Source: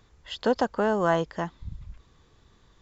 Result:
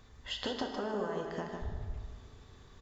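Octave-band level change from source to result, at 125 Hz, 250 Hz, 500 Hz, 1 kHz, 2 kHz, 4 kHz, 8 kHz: -7.0 dB, -10.0 dB, -11.5 dB, -12.5 dB, -11.0 dB, -1.0 dB, n/a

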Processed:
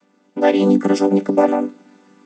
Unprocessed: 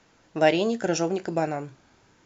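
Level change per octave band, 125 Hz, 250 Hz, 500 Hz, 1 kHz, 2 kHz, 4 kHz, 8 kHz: +6.5 dB, +12.5 dB, +8.0 dB, +6.5 dB, +1.5 dB, +0.5 dB, n/a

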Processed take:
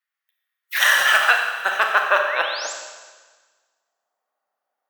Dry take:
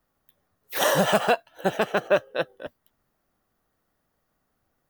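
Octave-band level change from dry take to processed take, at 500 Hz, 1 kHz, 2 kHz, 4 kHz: -4.0, +5.5, +13.0, +8.5 dB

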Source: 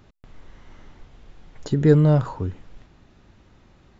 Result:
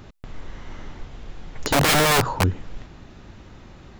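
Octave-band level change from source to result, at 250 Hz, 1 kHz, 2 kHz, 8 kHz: -5.0 dB, +12.5 dB, +16.5 dB, n/a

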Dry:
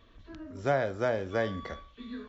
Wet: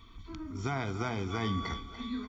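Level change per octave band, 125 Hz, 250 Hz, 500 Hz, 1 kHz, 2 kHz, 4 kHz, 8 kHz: +3.0 dB, +2.5 dB, -10.5 dB, -1.5 dB, -3.5 dB, +5.5 dB, n/a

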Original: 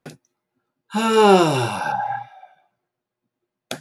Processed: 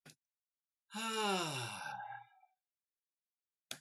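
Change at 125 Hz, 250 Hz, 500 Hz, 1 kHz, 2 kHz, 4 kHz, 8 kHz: -22.5, -25.0, -27.0, -22.0, -16.5, -14.0, -12.5 dB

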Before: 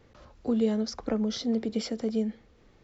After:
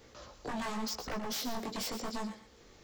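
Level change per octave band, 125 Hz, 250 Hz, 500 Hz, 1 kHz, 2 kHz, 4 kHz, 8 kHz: -9.5 dB, -12.5 dB, -11.5 dB, +5.5 dB, +5.0 dB, -0.5 dB, n/a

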